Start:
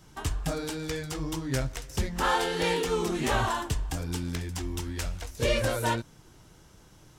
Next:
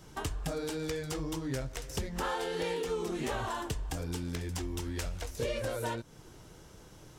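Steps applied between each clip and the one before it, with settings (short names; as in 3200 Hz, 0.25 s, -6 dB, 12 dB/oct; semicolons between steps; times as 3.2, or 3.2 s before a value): bell 470 Hz +5 dB 0.82 oct; compressor 4:1, threshold -34 dBFS, peak gain reduction 13 dB; gain +1 dB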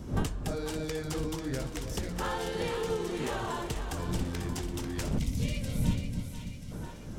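wind noise 190 Hz -37 dBFS; split-band echo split 740 Hz, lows 0.29 s, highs 0.492 s, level -7.5 dB; spectral gain 5.18–6.72, 280–1900 Hz -12 dB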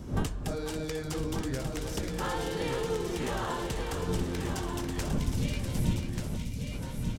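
echo 1.187 s -5.5 dB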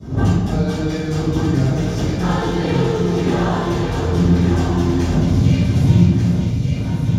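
reverb RT60 1.1 s, pre-delay 3 ms, DRR -20.5 dB; gain -11.5 dB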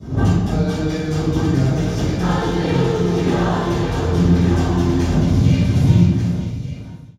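ending faded out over 1.27 s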